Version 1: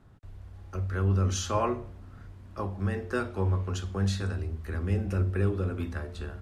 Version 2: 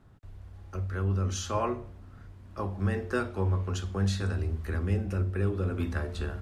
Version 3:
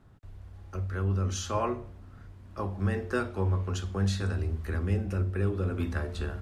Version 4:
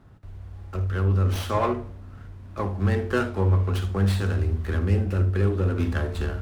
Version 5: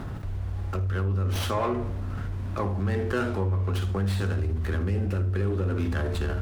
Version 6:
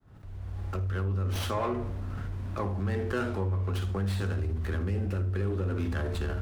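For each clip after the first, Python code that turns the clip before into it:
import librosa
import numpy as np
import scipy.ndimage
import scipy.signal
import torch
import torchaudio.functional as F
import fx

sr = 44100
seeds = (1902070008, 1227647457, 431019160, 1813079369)

y1 = fx.rider(x, sr, range_db=4, speed_s=0.5)
y2 = y1
y3 = fx.room_early_taps(y2, sr, ms=(54, 75), db=(-15.0, -16.0))
y3 = fx.running_max(y3, sr, window=5)
y3 = y3 * 10.0 ** (5.5 / 20.0)
y4 = fx.env_flatten(y3, sr, amount_pct=70)
y4 = y4 * 10.0 ** (-7.0 / 20.0)
y5 = fx.fade_in_head(y4, sr, length_s=0.66)
y5 = y5 * 10.0 ** (-3.5 / 20.0)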